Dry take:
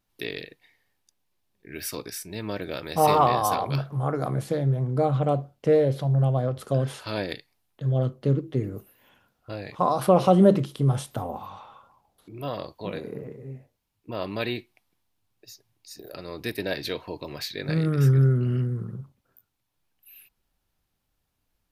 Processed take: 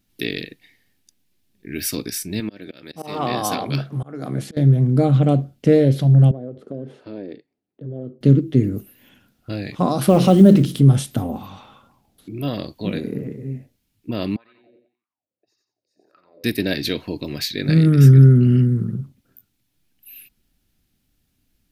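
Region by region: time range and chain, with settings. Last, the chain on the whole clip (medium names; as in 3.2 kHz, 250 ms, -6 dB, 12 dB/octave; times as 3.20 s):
2.40–4.57 s: high-pass 270 Hz 6 dB/octave + treble shelf 10 kHz -9.5 dB + slow attack 382 ms
6.31–8.21 s: band-pass filter 430 Hz, Q 1.7 + compression 2:1, threshold -38 dBFS
10.07–10.81 s: companding laws mixed up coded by mu + hum notches 60/120/180/240/300/360/420/480 Hz
14.36–16.44 s: feedback delay 89 ms, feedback 40%, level -5 dB + compression 2.5:1, threshold -38 dBFS + wah-wah 1.8 Hz 510–1200 Hz, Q 9.2
whole clip: ten-band graphic EQ 250 Hz +7 dB, 500 Hz -5 dB, 1 kHz -11 dB; loudness maximiser +9.5 dB; trim -1 dB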